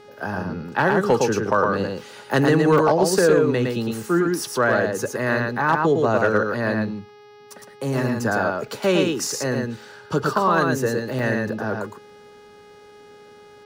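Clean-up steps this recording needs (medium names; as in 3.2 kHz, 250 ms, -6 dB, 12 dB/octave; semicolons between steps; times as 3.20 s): clip repair -9 dBFS; de-hum 415.2 Hz, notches 14; interpolate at 2.78/8.68/9.82/11.19 s, 1.8 ms; inverse comb 111 ms -3.5 dB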